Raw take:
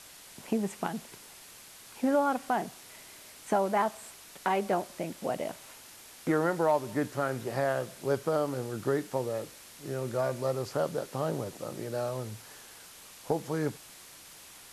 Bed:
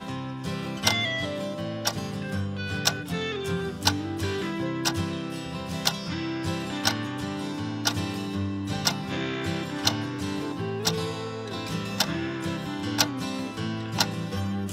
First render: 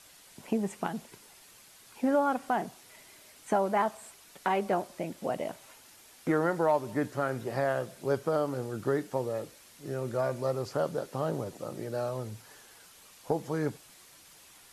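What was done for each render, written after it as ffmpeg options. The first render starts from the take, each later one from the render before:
-af "afftdn=nr=6:nf=-51"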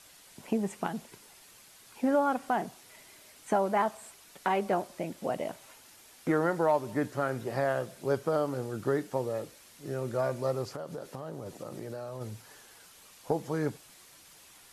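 -filter_complex "[0:a]asplit=3[s0][s1][s2];[s0]afade=t=out:st=10.65:d=0.02[s3];[s1]acompressor=threshold=0.0178:ratio=6:attack=3.2:release=140:knee=1:detection=peak,afade=t=in:st=10.65:d=0.02,afade=t=out:st=12.2:d=0.02[s4];[s2]afade=t=in:st=12.2:d=0.02[s5];[s3][s4][s5]amix=inputs=3:normalize=0"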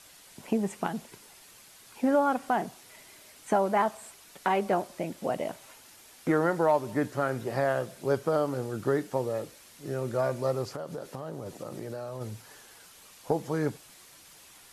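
-af "volume=1.26"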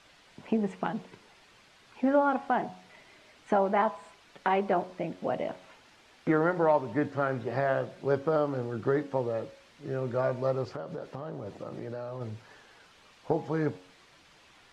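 -af "lowpass=3500,bandreject=f=91.6:t=h:w=4,bandreject=f=183.2:t=h:w=4,bandreject=f=274.8:t=h:w=4,bandreject=f=366.4:t=h:w=4,bandreject=f=458:t=h:w=4,bandreject=f=549.6:t=h:w=4,bandreject=f=641.2:t=h:w=4,bandreject=f=732.8:t=h:w=4,bandreject=f=824.4:t=h:w=4,bandreject=f=916:t=h:w=4,bandreject=f=1007.6:t=h:w=4,bandreject=f=1099.2:t=h:w=4"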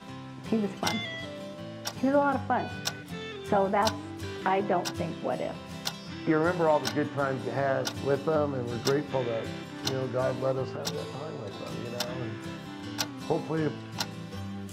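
-filter_complex "[1:a]volume=0.376[s0];[0:a][s0]amix=inputs=2:normalize=0"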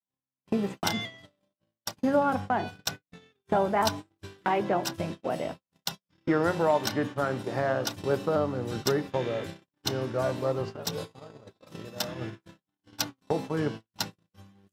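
-af "agate=range=0.00126:threshold=0.02:ratio=16:detection=peak,highshelf=f=12000:g=10.5"

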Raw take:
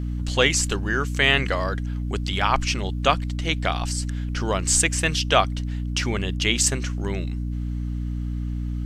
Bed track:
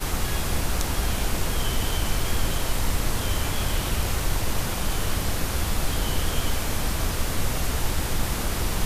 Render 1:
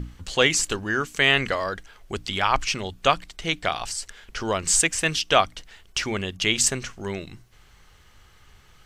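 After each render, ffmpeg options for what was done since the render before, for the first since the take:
-af "bandreject=f=60:t=h:w=6,bandreject=f=120:t=h:w=6,bandreject=f=180:t=h:w=6,bandreject=f=240:t=h:w=6,bandreject=f=300:t=h:w=6"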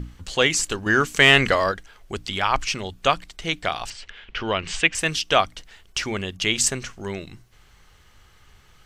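-filter_complex "[0:a]asettb=1/sr,asplit=3[s0][s1][s2];[s0]atrim=end=0.864[s3];[s1]atrim=start=0.86:end=1.72,asetpts=PTS-STARTPTS,afade=t=in:d=0.004:c=qsin,afade=t=out:st=0.856:d=0.004:c=qsin,acontrast=57[s4];[s2]atrim=start=1.716[s5];[s3][s4]acrossfade=d=0.004:c1=hsin:c2=qsin[s6];[s6][s5]acrossfade=d=0.004:c1=qsin:c2=hsin,asettb=1/sr,asplit=3[s7][s8][s9];[s7]atrim=end=3.904[s10];[s8]atrim=start=3.9:end=4.95,asetpts=PTS-STARTPTS,afade=t=in:d=0.004:c=qsin,afade=t=out:st=1.046:d=0.004:c=qsin,lowpass=f=2900:t=q:w=2.3[s11];[s9]atrim=start=4.946[s12];[s10][s11]acrossfade=d=0.004:c1=hsin:c2=qsin[s13];[s13][s12]acrossfade=d=0.004:c1=qsin:c2=hsin"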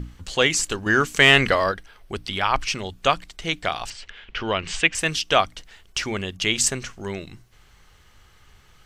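-filter_complex "[0:a]asettb=1/sr,asplit=3[s0][s1][s2];[s0]atrim=end=1.454[s3];[s1]atrim=start=1.45:end=2.68,asetpts=PTS-STARTPTS,afade=t=in:d=0.004:c=qsin,afade=t=out:st=1.226:d=0.004:c=qsin,equalizer=f=7000:t=o:w=0.28:g=-9.5[s4];[s2]atrim=start=2.676[s5];[s3][s4]acrossfade=d=0.004:c1=hsin:c2=qsin[s6];[s6][s5]acrossfade=d=0.004:c1=qsin:c2=hsin"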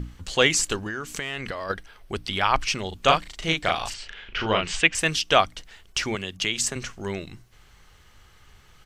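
-filter_complex "[0:a]asplit=3[s0][s1][s2];[s0]afade=t=out:st=0.81:d=0.02[s3];[s1]acompressor=threshold=0.0398:ratio=8:attack=3.2:release=140:knee=1:detection=peak,afade=t=in:st=0.81:d=0.02,afade=t=out:st=1.69:d=0.02[s4];[s2]afade=t=in:st=1.69:d=0.02[s5];[s3][s4][s5]amix=inputs=3:normalize=0,asplit=3[s6][s7][s8];[s6]afade=t=out:st=2.91:d=0.02[s9];[s7]asplit=2[s10][s11];[s11]adelay=37,volume=0.708[s12];[s10][s12]amix=inputs=2:normalize=0,afade=t=in:st=2.91:d=0.02,afade=t=out:st=4.66:d=0.02[s13];[s8]afade=t=in:st=4.66:d=0.02[s14];[s9][s13][s14]amix=inputs=3:normalize=0,asettb=1/sr,asplit=3[s15][s16][s17];[s15]atrim=end=6.154[s18];[s16]atrim=start=6.15:end=6.76,asetpts=PTS-STARTPTS,afade=t=in:d=0.004:c=qsin,afade=t=out:st=0.606:d=0.004:c=qsin,acrossover=split=120|1900[s19][s20][s21];[s19]acompressor=threshold=0.00501:ratio=4[s22];[s20]acompressor=threshold=0.0251:ratio=4[s23];[s21]acompressor=threshold=0.0708:ratio=4[s24];[s22][s23][s24]amix=inputs=3:normalize=0[s25];[s17]atrim=start=6.756[s26];[s18][s25]acrossfade=d=0.004:c1=hsin:c2=qsin[s27];[s27][s26]acrossfade=d=0.004:c1=qsin:c2=hsin"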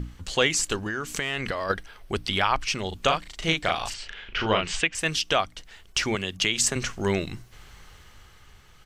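-af "dynaudnorm=f=240:g=9:m=2.37,alimiter=limit=0.355:level=0:latency=1:release=416"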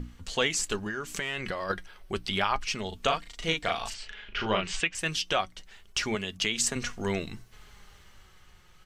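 -af "flanger=delay=4.1:depth=1.5:regen=58:speed=0.29:shape=triangular"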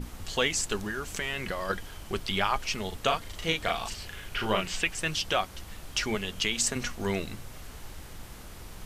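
-filter_complex "[1:a]volume=0.112[s0];[0:a][s0]amix=inputs=2:normalize=0"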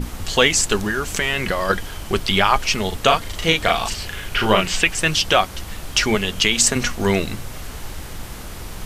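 -af "volume=3.76,alimiter=limit=0.794:level=0:latency=1"

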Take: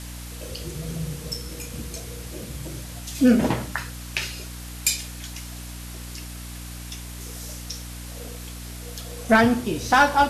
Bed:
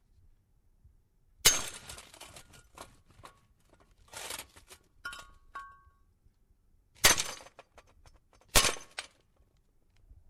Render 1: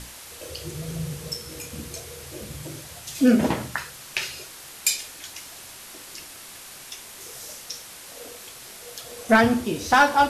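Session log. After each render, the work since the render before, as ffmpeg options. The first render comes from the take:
-af "bandreject=f=60:t=h:w=6,bandreject=f=120:t=h:w=6,bandreject=f=180:t=h:w=6,bandreject=f=240:t=h:w=6,bandreject=f=300:t=h:w=6"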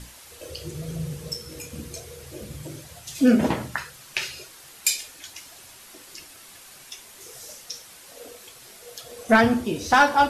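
-af "afftdn=nr=6:nf=-43"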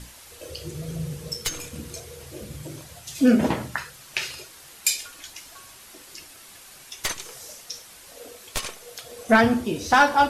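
-filter_complex "[1:a]volume=0.501[s0];[0:a][s0]amix=inputs=2:normalize=0"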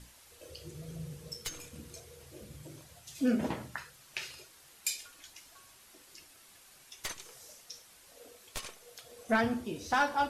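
-af "volume=0.266"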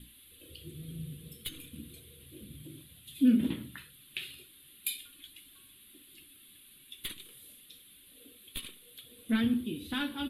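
-af "firequalizer=gain_entry='entry(130,0);entry(270,7);entry(410,-5);entry(710,-21);entry(1100,-12);entry(3500,8);entry(5600,-26);entry(10000,5)':delay=0.05:min_phase=1"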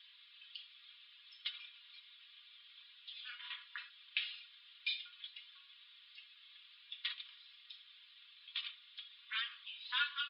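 -af "afftfilt=real='re*between(b*sr/4096,970,5400)':imag='im*between(b*sr/4096,970,5400)':win_size=4096:overlap=0.75,aecho=1:1:4.2:0.65"

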